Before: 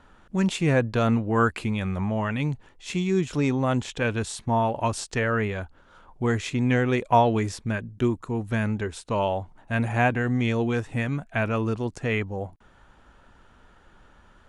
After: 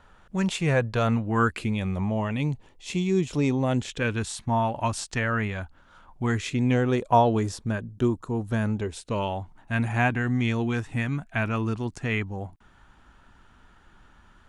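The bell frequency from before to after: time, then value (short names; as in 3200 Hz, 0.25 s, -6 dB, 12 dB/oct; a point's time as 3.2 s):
bell -8 dB 0.7 oct
1.06 s 280 Hz
1.84 s 1500 Hz
3.56 s 1500 Hz
4.37 s 440 Hz
6.24 s 440 Hz
6.83 s 2200 Hz
8.71 s 2200 Hz
9.34 s 520 Hz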